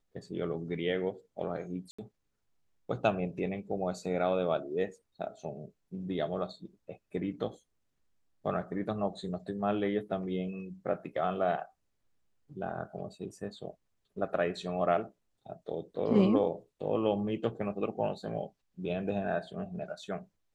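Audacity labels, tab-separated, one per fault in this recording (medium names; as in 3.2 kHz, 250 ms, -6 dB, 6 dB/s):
1.910000	1.990000	dropout 75 ms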